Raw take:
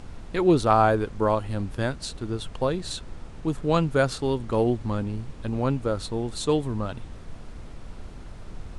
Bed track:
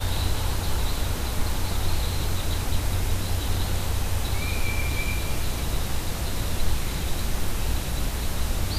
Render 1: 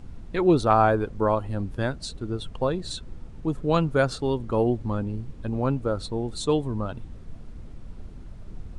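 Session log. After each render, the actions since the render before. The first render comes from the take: denoiser 9 dB, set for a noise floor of -41 dBFS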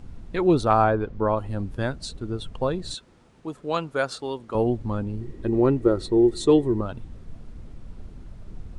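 0.84–1.38 air absorption 130 m; 2.94–4.55 HPF 570 Hz 6 dB/oct; 5.21–6.81 small resonant body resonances 360/1900 Hz, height 17 dB, ringing for 55 ms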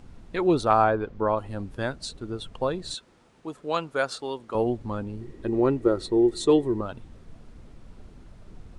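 low shelf 230 Hz -7.5 dB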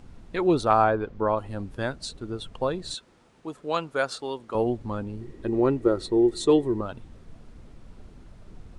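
nothing audible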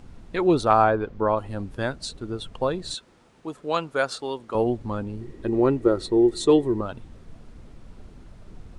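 gain +2 dB

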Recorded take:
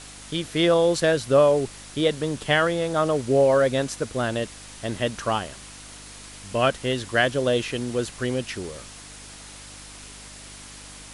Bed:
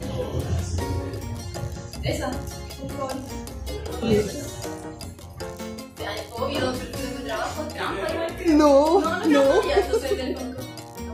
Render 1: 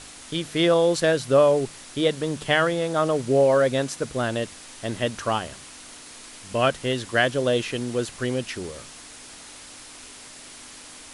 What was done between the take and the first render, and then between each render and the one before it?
de-hum 50 Hz, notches 4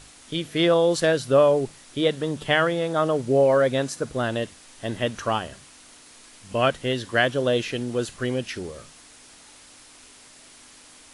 noise print and reduce 6 dB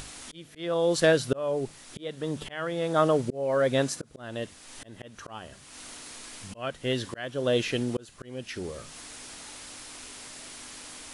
upward compressor, threshold -36 dBFS; auto swell 0.512 s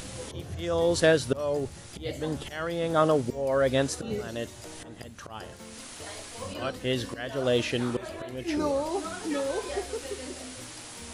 add bed -12.5 dB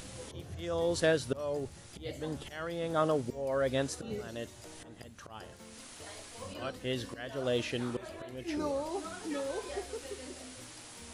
gain -6.5 dB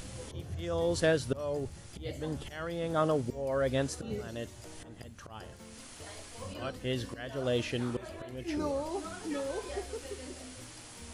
low shelf 130 Hz +7.5 dB; notch 3800 Hz, Q 29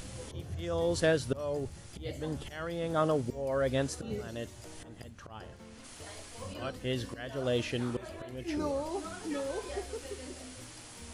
5.09–5.83 LPF 5500 Hz -> 2900 Hz 6 dB/oct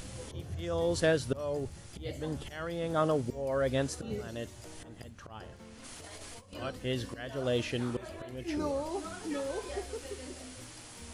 5.82–6.53 negative-ratio compressor -47 dBFS, ratio -0.5

